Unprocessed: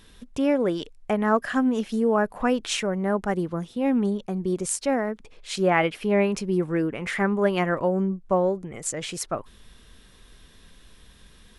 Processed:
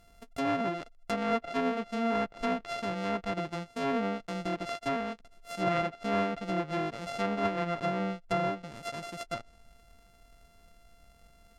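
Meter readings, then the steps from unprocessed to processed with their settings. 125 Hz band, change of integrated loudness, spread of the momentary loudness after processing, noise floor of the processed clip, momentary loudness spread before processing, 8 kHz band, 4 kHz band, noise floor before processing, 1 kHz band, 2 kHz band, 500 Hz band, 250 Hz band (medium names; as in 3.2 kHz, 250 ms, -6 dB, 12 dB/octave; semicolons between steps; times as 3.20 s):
-8.0 dB, -7.5 dB, 9 LU, -60 dBFS, 8 LU, -18.0 dB, -6.5 dB, -53 dBFS, -3.5 dB, -7.0 dB, -8.5 dB, -9.5 dB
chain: sorted samples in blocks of 64 samples; low-pass that closes with the level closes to 2.4 kHz, closed at -19.5 dBFS; trim -7.5 dB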